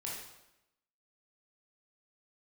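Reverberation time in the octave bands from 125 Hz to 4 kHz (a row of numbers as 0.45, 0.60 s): 0.90, 0.95, 0.90, 0.90, 0.85, 0.80 s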